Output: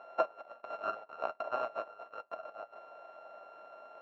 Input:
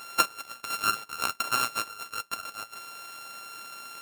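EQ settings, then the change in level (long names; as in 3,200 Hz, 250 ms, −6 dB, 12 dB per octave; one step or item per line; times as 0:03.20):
resonant band-pass 640 Hz, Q 7.1
high-frequency loss of the air 210 metres
+12.5 dB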